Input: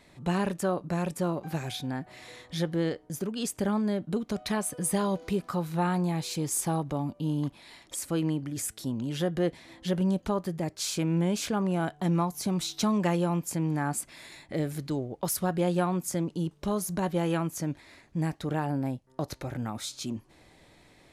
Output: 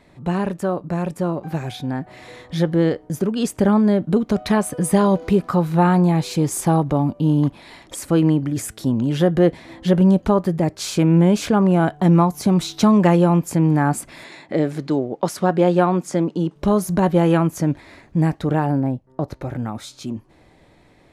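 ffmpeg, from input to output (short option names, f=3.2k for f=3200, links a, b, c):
-filter_complex "[0:a]asettb=1/sr,asplit=3[a][b][c];[a]atrim=end=14.244[d];[b]atrim=start=14.24:end=16.56,asetpts=PTS-STARTPTS,afade=t=in:d=0.004:c=qsin,afade=t=out:st=2.316:d=0.004:c=qsin,highpass=200,lowpass=7.4k[e];[c]atrim=start=16.556[f];[d][e]acrossfade=d=0.004:c1=hsin:c2=qsin[g];[g][f]acrossfade=d=0.004:c1=qsin:c2=hsin,asettb=1/sr,asplit=3[h][i][j];[h]atrim=end=18.804[k];[i]atrim=start=18.8:end=19.42,asetpts=PTS-STARTPTS,afade=t=in:d=0.004:c=qsin,afade=t=out:st=0.616:d=0.004:c=qsin,highshelf=f=2k:g=-8.5[l];[j]atrim=start=19.416[m];[k][l]acrossfade=d=0.004:c1=hsin:c2=qsin[n];[n][m]acrossfade=d=0.004:c1=qsin:c2=hsin,highshelf=f=2.4k:g=-10,dynaudnorm=f=150:g=31:m=6dB,volume=6.5dB"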